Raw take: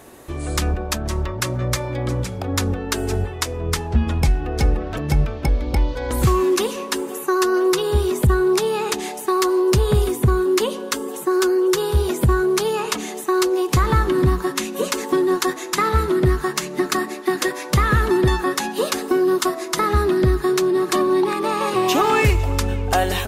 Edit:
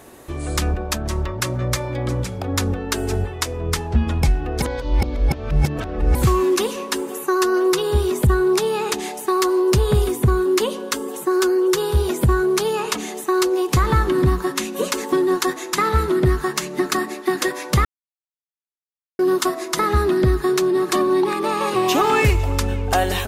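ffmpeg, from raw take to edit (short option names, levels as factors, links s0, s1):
-filter_complex "[0:a]asplit=5[s0][s1][s2][s3][s4];[s0]atrim=end=4.622[s5];[s1]atrim=start=4.618:end=6.152,asetpts=PTS-STARTPTS,areverse[s6];[s2]atrim=start=6.148:end=17.85,asetpts=PTS-STARTPTS,afade=t=out:st=11.698:d=0.004:c=hsin[s7];[s3]atrim=start=17.85:end=19.19,asetpts=PTS-STARTPTS,volume=0[s8];[s4]atrim=start=19.19,asetpts=PTS-STARTPTS,afade=t=in:d=0.004:c=hsin[s9];[s5][s6]acrossfade=d=0.004:c1=hsin:c2=hsin[s10];[s7][s8][s9]concat=n=3:v=0:a=1[s11];[s10][s11]acrossfade=d=0.004:c1=hsin:c2=hsin"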